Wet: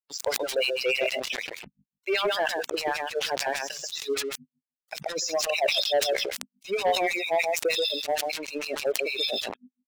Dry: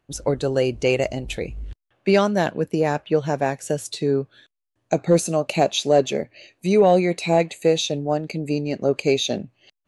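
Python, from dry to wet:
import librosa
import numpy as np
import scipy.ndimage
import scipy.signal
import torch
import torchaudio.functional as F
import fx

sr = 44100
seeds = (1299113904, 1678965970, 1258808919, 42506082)

y = fx.freq_compress(x, sr, knee_hz=3400.0, ratio=1.5)
y = fx.low_shelf(y, sr, hz=340.0, db=-9.0)
y = y + 10.0 ** (-6.0 / 20.0) * np.pad(y, (int(132 * sr / 1000.0), 0))[:len(y)]
y = np.where(np.abs(y) >= 10.0 ** (-35.0 / 20.0), y, 0.0)
y = scipy.signal.sosfilt(scipy.signal.butter(4, 53.0, 'highpass', fs=sr, output='sos'), y)
y = fx.hum_notches(y, sr, base_hz=50, count=5)
y = fx.filter_lfo_highpass(y, sr, shape='sine', hz=6.5, low_hz=310.0, high_hz=3900.0, q=0.79)
y = fx.spec_gate(y, sr, threshold_db=-15, keep='strong')
y = fx.leveller(y, sr, passes=2)
y = fx.sustainer(y, sr, db_per_s=42.0)
y = F.gain(torch.from_numpy(y), -7.5).numpy()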